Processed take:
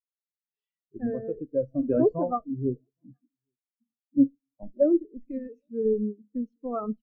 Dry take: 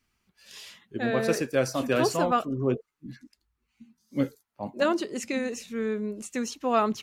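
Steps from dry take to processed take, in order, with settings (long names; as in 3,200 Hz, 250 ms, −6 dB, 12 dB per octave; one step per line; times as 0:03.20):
in parallel at −7 dB: comparator with hysteresis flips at −22.5 dBFS
on the sum: downward compressor 1.5 to 1, threshold −35 dBFS, peak gain reduction 6.5 dB
on a send at −14 dB: convolution reverb RT60 0.55 s, pre-delay 7 ms
on the sum: rotating-speaker cabinet horn 0.85 Hz
parametric band 9,900 Hz −13 dB 2.5 octaves
slap from a distant wall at 140 metres, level −24 dB
every bin expanded away from the loudest bin 2.5 to 1
level +8.5 dB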